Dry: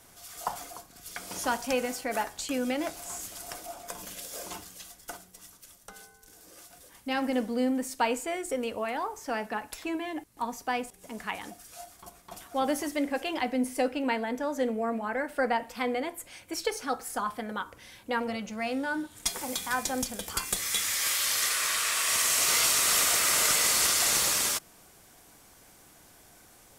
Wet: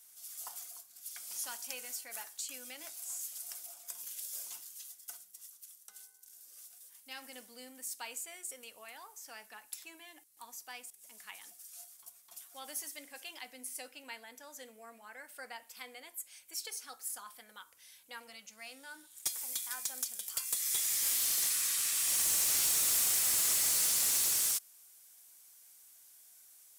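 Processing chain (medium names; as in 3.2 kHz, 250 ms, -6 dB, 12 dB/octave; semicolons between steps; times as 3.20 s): pre-emphasis filter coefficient 0.97; in parallel at -5.5 dB: integer overflow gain 21.5 dB; on the sum: trim -6 dB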